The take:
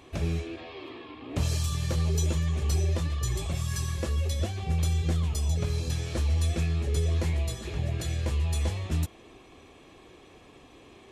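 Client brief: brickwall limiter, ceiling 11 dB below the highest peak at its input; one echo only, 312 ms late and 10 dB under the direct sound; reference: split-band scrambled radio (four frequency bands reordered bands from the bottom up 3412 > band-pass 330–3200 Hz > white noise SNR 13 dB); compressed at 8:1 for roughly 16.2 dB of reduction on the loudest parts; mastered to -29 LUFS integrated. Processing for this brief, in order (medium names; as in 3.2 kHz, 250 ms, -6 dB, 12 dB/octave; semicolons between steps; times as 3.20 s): compression 8:1, threshold -40 dBFS; peak limiter -40.5 dBFS; delay 312 ms -10 dB; four frequency bands reordered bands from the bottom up 3412; band-pass 330–3200 Hz; white noise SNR 13 dB; trim +17.5 dB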